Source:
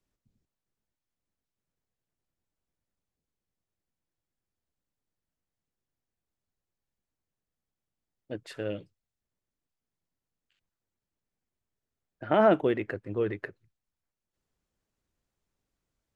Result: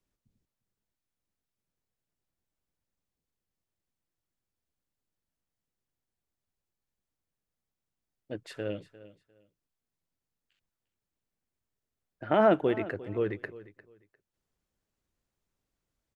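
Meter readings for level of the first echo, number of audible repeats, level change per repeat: -17.5 dB, 2, -13.0 dB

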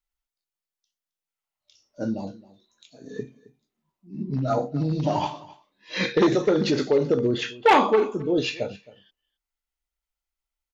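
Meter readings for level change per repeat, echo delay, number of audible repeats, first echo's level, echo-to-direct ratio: no steady repeat, 0.267 s, 1, -20.5 dB, -20.5 dB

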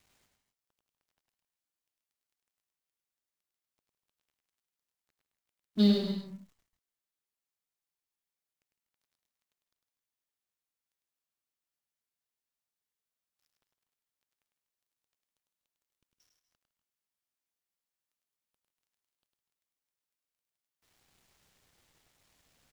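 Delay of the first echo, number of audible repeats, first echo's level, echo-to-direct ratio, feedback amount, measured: 0.102 s, 3, -5.0 dB, -3.5 dB, no steady repeat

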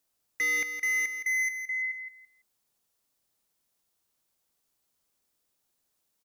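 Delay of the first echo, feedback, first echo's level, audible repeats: 0.167 s, 21%, -9.0 dB, 2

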